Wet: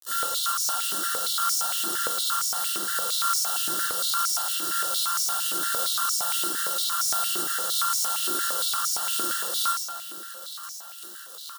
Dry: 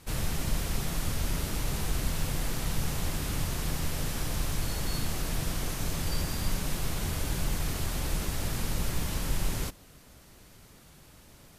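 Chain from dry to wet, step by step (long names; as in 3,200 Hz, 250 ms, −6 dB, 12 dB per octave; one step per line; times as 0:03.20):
samples sorted by size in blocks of 32 samples
comb filter 5.7 ms, depth 90%
soft clipping −23.5 dBFS, distortion −13 dB
downward compressor 16 to 1, threshold −30 dBFS, peak gain reduction 6 dB
bit reduction 7 bits
Butterworth band-reject 2,300 Hz, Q 1.8
spectral tilt +4 dB per octave
feedback delay with all-pass diffusion 515 ms, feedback 75%, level −16 dB
convolution reverb RT60 1.4 s, pre-delay 12 ms, DRR −7 dB
high-pass on a step sequencer 8.7 Hz 330–5,700 Hz
level −4.5 dB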